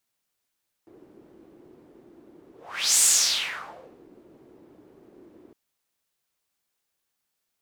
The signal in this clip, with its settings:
pass-by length 4.66 s, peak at 0:02.13, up 0.49 s, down 1.09 s, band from 340 Hz, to 7,900 Hz, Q 3.6, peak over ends 35 dB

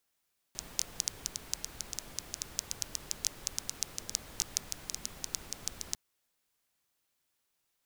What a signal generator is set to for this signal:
rain-like ticks over hiss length 5.40 s, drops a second 7.7, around 6,000 Hz, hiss −9 dB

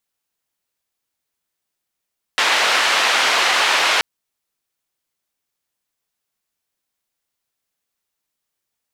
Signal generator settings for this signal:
band-limited noise 660–3,000 Hz, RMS −16.5 dBFS 1.63 s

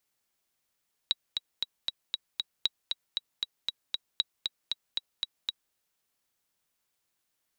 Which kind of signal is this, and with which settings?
click track 233 BPM, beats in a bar 6, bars 3, 3,860 Hz, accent 4.5 dB −12 dBFS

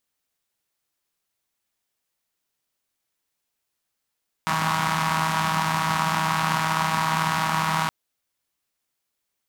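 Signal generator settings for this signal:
pulse-train model of a four-cylinder engine, steady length 3.42 s, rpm 4,800, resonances 180/990 Hz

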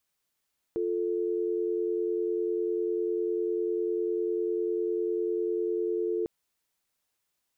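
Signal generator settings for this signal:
call progress tone dial tone, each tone −29 dBFS 5.50 s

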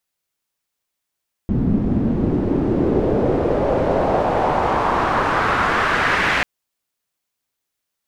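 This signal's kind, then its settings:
filter sweep on noise white, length 4.94 s lowpass, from 190 Hz, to 2,000 Hz, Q 2, exponential, gain ramp −10 dB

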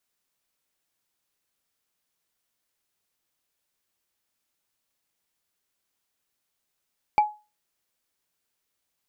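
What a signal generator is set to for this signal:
struck wood, lowest mode 843 Hz, decay 0.29 s, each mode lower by 12 dB, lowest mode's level −12 dB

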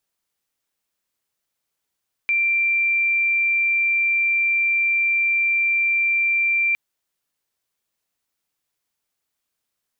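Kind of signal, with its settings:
tone sine 2,360 Hz −16.5 dBFS 4.46 s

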